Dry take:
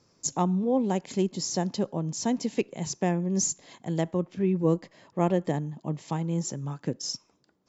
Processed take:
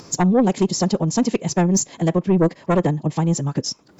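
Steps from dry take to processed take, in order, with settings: high shelf 4100 Hz -2.5 dB; upward compressor, threshold -40 dBFS; time stretch by phase-locked vocoder 0.52×; sine folder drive 5 dB, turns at -13 dBFS; gain +2.5 dB

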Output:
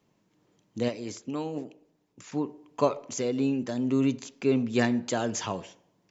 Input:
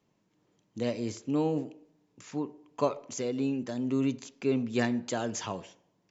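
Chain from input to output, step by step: 0.88–2.32 harmonic-percussive split harmonic -10 dB; gain +3.5 dB

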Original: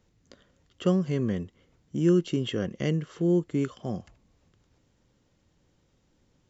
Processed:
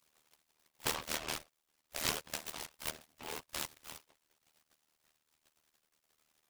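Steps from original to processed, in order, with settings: reverb removal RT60 0.77 s; 1.98–3.98 HPF 380 Hz 6 dB/oct; spectral gate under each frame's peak -30 dB weak; AM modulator 77 Hz, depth 80%; noise-modulated delay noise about 1700 Hz, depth 0.17 ms; gain +18 dB

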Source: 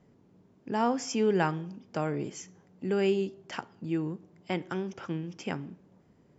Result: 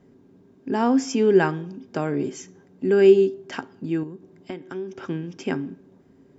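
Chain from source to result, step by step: 4.03–5.02 compressor 16:1, threshold -38 dBFS, peak gain reduction 13 dB; small resonant body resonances 270/380/1600/3700 Hz, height 12 dB, ringing for 0.1 s; gain +3.5 dB

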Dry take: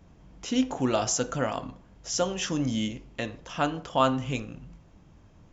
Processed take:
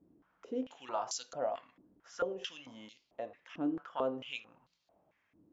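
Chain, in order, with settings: stepped band-pass 4.5 Hz 310–4300 Hz

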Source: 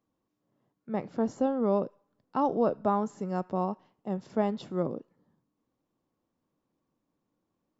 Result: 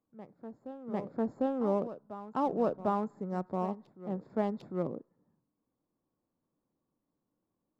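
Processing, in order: Wiener smoothing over 15 samples; reverse echo 0.75 s -13.5 dB; gain -3.5 dB

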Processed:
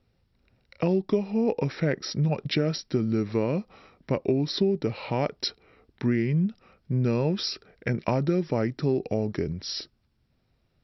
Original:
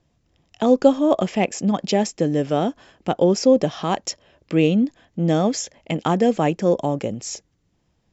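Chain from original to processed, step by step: compressor 6:1, threshold -18 dBFS, peak gain reduction 10 dB; varispeed -25%; gain -2.5 dB

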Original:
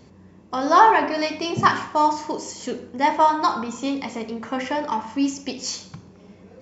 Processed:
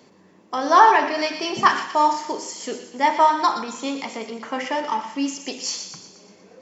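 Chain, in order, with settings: HPF 200 Hz 12 dB/oct; low shelf 270 Hz -7 dB; on a send: thin delay 0.119 s, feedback 52%, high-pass 2100 Hz, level -8 dB; on the sum: gain +1.5 dB

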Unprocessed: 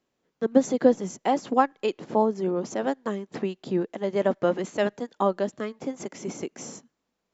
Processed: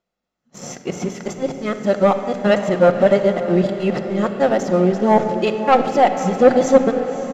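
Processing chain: whole clip reversed; comb 1.5 ms, depth 40%; sample leveller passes 2; air absorption 53 m; diffused feedback echo 0.557 s, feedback 54%, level -12 dB; shoebox room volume 2900 m³, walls mixed, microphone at 0.93 m; gain +2 dB

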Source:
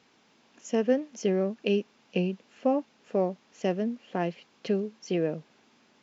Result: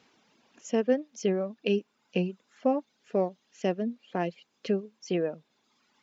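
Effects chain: reverb removal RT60 1.3 s

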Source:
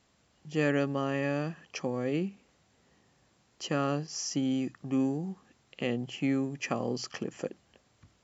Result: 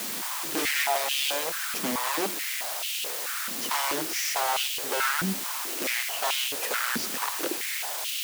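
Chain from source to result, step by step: wrapped overs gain 29 dB; requantised 6-bit, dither triangular; stepped high-pass 4.6 Hz 230–2900 Hz; gain +3 dB

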